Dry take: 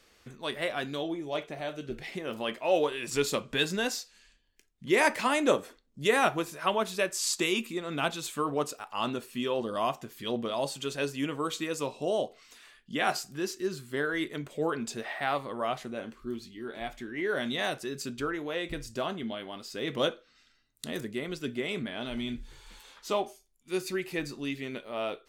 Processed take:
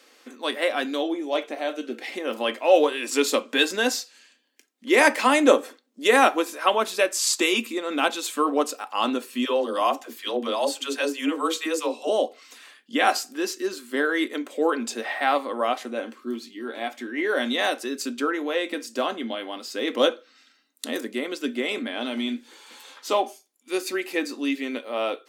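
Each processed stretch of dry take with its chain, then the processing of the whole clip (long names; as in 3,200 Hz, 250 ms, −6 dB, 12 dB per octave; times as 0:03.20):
0:09.45–0:12.09: parametric band 84 Hz −13.5 dB 1.7 octaves + all-pass dispersion lows, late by 76 ms, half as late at 390 Hz
whole clip: elliptic high-pass filter 250 Hz, stop band 50 dB; comb filter 3.8 ms, depth 30%; level +7.5 dB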